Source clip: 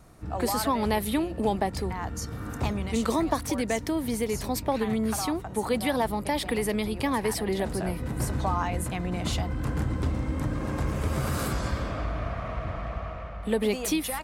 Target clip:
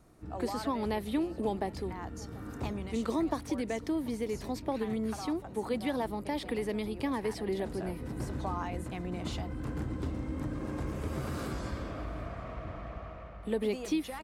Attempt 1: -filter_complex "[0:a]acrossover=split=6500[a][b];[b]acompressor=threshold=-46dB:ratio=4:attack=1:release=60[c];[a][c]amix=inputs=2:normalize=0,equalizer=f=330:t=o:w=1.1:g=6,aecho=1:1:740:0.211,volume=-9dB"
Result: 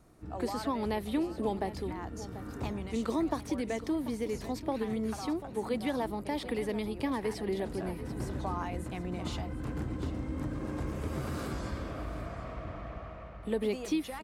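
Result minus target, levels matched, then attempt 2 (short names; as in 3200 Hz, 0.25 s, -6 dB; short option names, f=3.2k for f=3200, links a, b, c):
echo-to-direct +7.5 dB
-filter_complex "[0:a]acrossover=split=6500[a][b];[b]acompressor=threshold=-46dB:ratio=4:attack=1:release=60[c];[a][c]amix=inputs=2:normalize=0,equalizer=f=330:t=o:w=1.1:g=6,aecho=1:1:740:0.0891,volume=-9dB"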